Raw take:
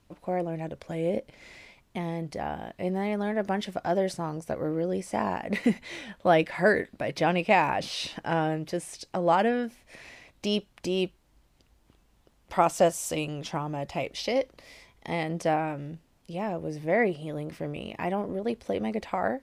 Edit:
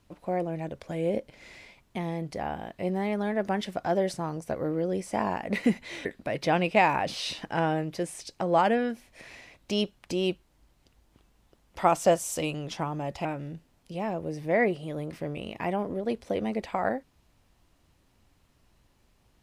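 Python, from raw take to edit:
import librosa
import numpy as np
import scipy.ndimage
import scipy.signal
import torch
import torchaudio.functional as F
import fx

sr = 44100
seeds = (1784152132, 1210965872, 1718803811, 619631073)

y = fx.edit(x, sr, fx.cut(start_s=6.05, length_s=0.74),
    fx.cut(start_s=13.99, length_s=1.65), tone=tone)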